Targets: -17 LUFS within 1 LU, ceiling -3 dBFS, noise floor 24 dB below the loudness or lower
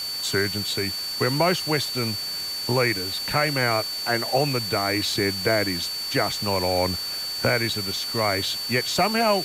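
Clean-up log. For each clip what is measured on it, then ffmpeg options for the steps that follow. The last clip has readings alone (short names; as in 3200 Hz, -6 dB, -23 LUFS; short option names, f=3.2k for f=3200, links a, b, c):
steady tone 4500 Hz; tone level -28 dBFS; noise floor -30 dBFS; noise floor target -47 dBFS; loudness -23.0 LUFS; peak -9.0 dBFS; loudness target -17.0 LUFS
-> -af "bandreject=f=4.5k:w=30"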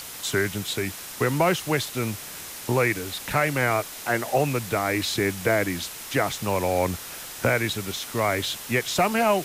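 steady tone none; noise floor -38 dBFS; noise floor target -49 dBFS
-> -af "afftdn=nr=11:nf=-38"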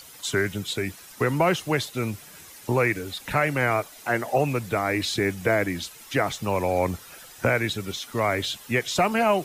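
noise floor -46 dBFS; noise floor target -50 dBFS
-> -af "afftdn=nr=6:nf=-46"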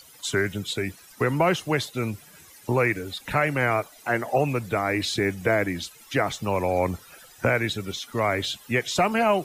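noise floor -51 dBFS; loudness -25.5 LUFS; peak -10.5 dBFS; loudness target -17.0 LUFS
-> -af "volume=8.5dB,alimiter=limit=-3dB:level=0:latency=1"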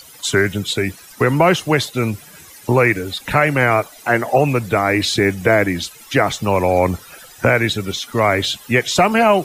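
loudness -17.0 LUFS; peak -3.0 dBFS; noise floor -42 dBFS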